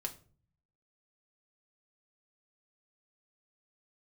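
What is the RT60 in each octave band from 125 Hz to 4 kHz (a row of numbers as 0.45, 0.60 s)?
0.90, 0.80, 0.50, 0.35, 0.30, 0.30 s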